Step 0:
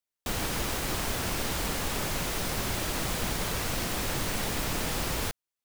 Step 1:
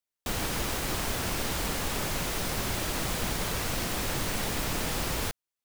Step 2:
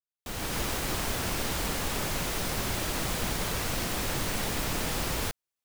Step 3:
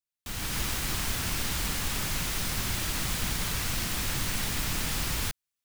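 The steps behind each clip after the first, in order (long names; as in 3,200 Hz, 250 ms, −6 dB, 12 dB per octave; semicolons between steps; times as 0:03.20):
no processing that can be heard
fade in at the beginning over 0.58 s
parametric band 520 Hz −10.5 dB 1.9 octaves; level +2 dB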